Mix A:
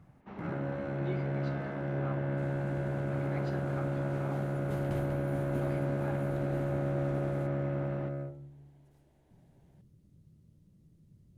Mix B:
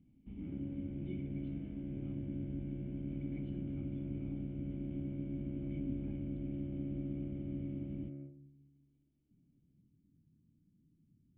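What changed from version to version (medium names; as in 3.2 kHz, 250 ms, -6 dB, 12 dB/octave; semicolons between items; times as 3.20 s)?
speech: remove band-pass 250–2500 Hz; second sound -5.5 dB; master: add cascade formant filter i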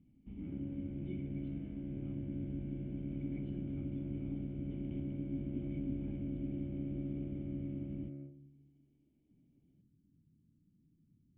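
speech: add distance through air 63 m; second sound +7.5 dB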